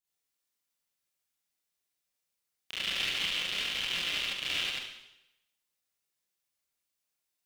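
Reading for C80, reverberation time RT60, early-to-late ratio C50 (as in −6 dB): 3.0 dB, 0.90 s, −4.0 dB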